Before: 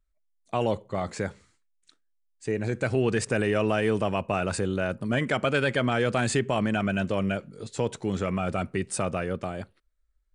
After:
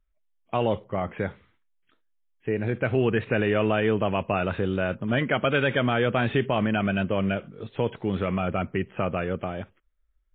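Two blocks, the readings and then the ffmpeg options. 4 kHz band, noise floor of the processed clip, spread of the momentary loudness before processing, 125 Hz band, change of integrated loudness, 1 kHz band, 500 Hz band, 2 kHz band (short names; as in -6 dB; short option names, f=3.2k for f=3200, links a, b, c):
+1.0 dB, -70 dBFS, 9 LU, +1.5 dB, +1.5 dB, +1.5 dB, +1.5 dB, +1.5 dB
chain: -af "volume=2dB" -ar 8000 -c:a libmp3lame -b:a 24k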